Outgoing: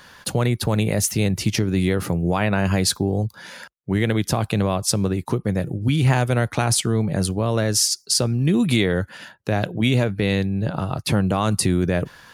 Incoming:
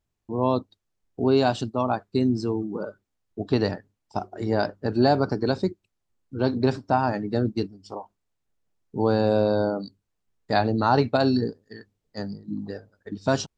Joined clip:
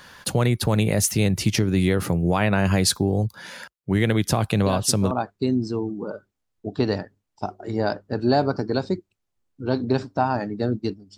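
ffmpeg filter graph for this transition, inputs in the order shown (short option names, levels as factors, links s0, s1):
-filter_complex "[1:a]asplit=2[s0][s1];[0:a]apad=whole_dur=11.17,atrim=end=11.17,atrim=end=5.112[s2];[s1]atrim=start=1.838:end=7.9[s3];[s0]atrim=start=1.39:end=1.84,asetpts=PTS-STARTPTS,volume=0.447,afade=t=in:d=0.004:c=hsin,afade=t=out:st=0.446:d=0.004:c=hsin,adelay=4660[s4];[s2][s3]acrossfade=d=0.004:c1=hsin:c2=hsin[s5];[s5][s4]amix=inputs=2:normalize=0"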